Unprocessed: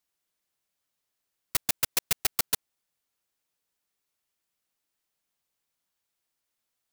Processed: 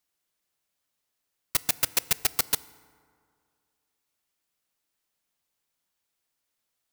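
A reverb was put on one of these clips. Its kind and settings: FDN reverb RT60 2.2 s, low-frequency decay 0.95×, high-frequency decay 0.45×, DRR 17.5 dB; trim +1.5 dB

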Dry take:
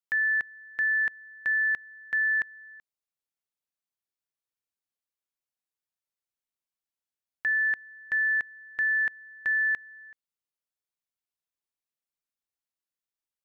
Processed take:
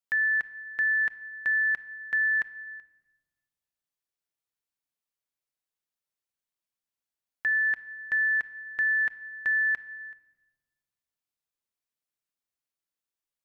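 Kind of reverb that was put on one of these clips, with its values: simulated room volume 990 m³, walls mixed, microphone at 0.38 m

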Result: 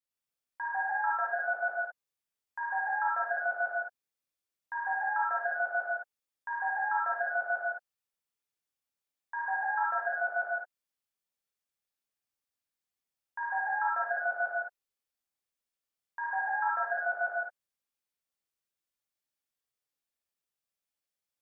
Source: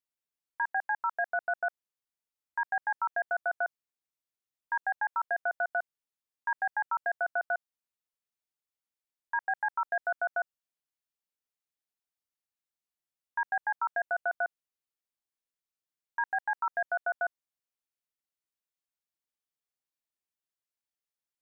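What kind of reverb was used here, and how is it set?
gated-style reverb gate 240 ms flat, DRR -7.5 dB; trim -6.5 dB

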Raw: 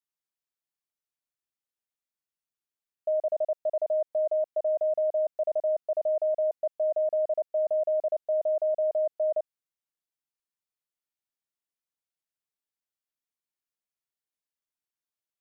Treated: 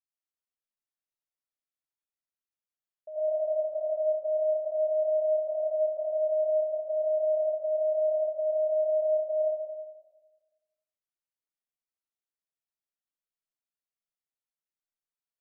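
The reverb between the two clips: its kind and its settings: algorithmic reverb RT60 1.3 s, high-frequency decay 0.4×, pre-delay 50 ms, DRR -8.5 dB; trim -15.5 dB

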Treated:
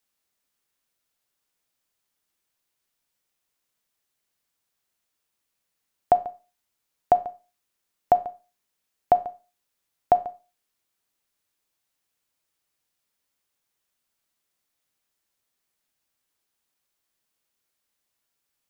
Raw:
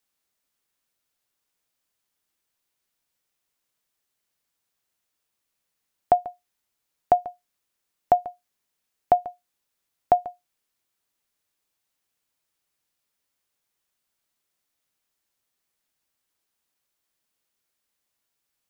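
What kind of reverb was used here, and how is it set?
Schroeder reverb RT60 0.32 s, combs from 28 ms, DRR 13.5 dB

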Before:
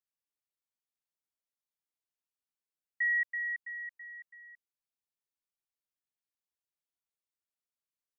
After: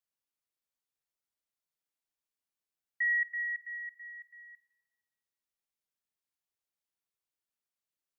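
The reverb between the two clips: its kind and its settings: spring tank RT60 1.4 s, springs 47/56 ms, chirp 45 ms, DRR 14.5 dB

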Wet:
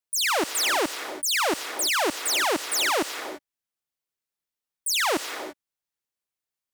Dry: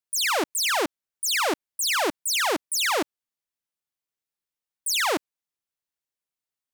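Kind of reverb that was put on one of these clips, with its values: gated-style reverb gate 370 ms rising, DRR 10 dB

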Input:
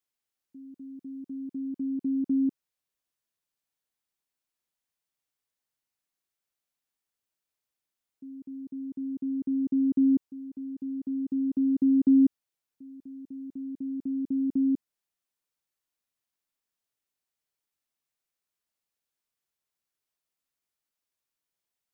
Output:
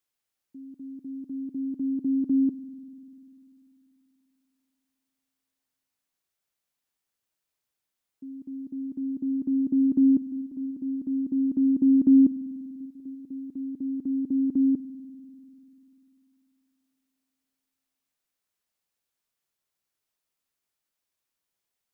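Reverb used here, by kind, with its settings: spring tank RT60 3.1 s, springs 49 ms, chirp 65 ms, DRR 14.5 dB; trim +3 dB

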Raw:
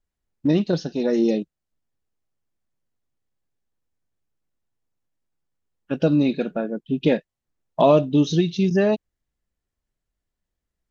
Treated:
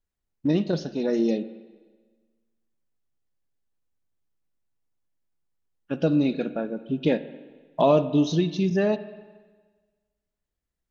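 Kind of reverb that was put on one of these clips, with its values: spring tank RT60 1.4 s, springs 44/57 ms, chirp 35 ms, DRR 13.5 dB; trim -3.5 dB

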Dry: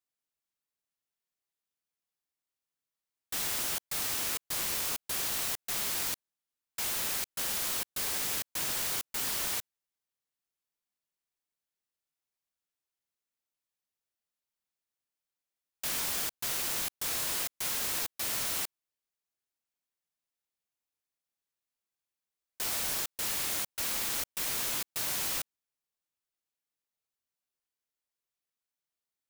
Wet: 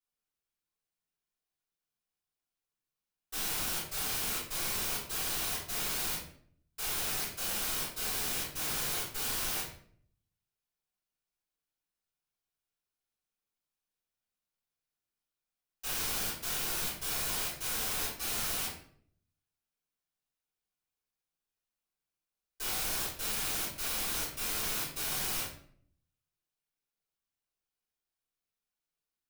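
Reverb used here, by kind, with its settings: simulated room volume 78 m³, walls mixed, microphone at 3.8 m; trim -14 dB

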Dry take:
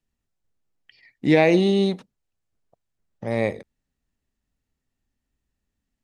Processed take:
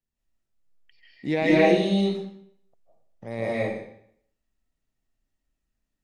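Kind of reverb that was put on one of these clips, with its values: algorithmic reverb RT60 0.67 s, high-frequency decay 0.9×, pre-delay 120 ms, DRR -7 dB; trim -9 dB

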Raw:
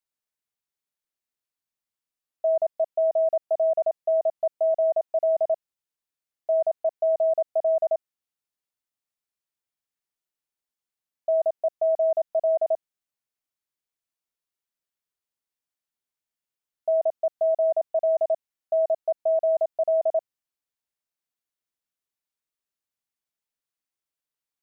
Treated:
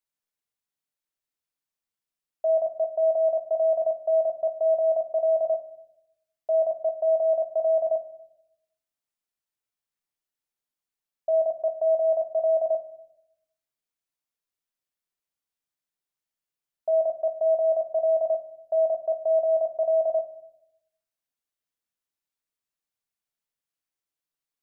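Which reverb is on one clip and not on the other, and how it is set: simulated room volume 180 m³, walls mixed, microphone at 0.4 m; trim -1.5 dB

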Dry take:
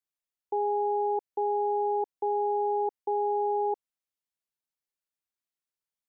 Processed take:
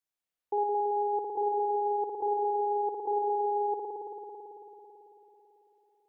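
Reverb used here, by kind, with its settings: spring tank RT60 3.9 s, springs 55 ms, chirp 25 ms, DRR -3 dB; trim -1 dB

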